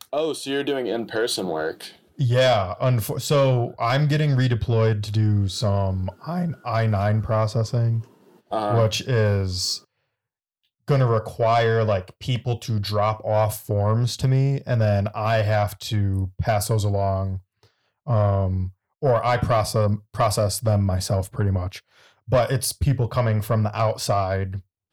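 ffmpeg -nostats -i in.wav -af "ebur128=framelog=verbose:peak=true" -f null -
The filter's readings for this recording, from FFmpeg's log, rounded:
Integrated loudness:
  I:         -22.6 LUFS
  Threshold: -32.9 LUFS
Loudness range:
  LRA:         2.6 LU
  Threshold: -42.9 LUFS
  LRA low:   -24.1 LUFS
  LRA high:  -21.5 LUFS
True peak:
  Peak:      -10.6 dBFS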